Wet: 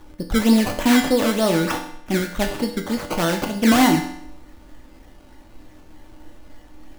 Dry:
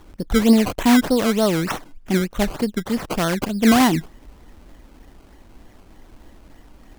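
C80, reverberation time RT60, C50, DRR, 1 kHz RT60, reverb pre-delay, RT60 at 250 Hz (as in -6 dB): 10.5 dB, 0.70 s, 7.5 dB, 2.0 dB, 0.70 s, 3 ms, 0.70 s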